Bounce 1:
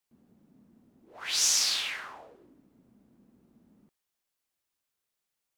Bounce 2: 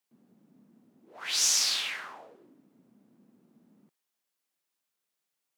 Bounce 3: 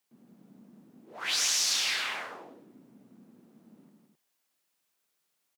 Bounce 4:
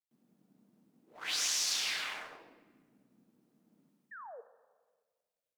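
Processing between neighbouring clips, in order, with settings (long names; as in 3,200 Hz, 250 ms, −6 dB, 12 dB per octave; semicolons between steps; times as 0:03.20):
high-pass filter 140 Hz 24 dB per octave
downward compressor 6 to 1, threshold −30 dBFS, peak gain reduction 9 dB; loudspeakers that aren't time-aligned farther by 35 metres −9 dB, 57 metres −5 dB, 90 metres −8 dB; level +4 dB
mu-law and A-law mismatch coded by A; sound drawn into the spectrogram fall, 0:04.11–0:04.41, 430–1,900 Hz −43 dBFS; convolution reverb RT60 1.6 s, pre-delay 6 ms, DRR 11.5 dB; level −4.5 dB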